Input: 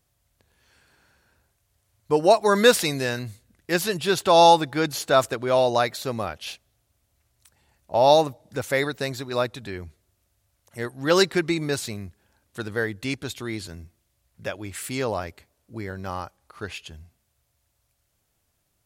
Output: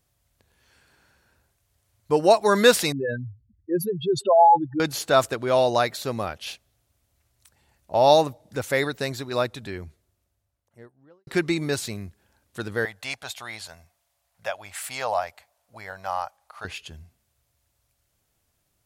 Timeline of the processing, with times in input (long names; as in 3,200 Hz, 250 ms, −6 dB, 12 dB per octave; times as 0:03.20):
0:02.92–0:04.80: expanding power law on the bin magnitudes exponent 3.9
0:09.61–0:11.27: fade out and dull
0:12.85–0:16.65: low shelf with overshoot 490 Hz −12.5 dB, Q 3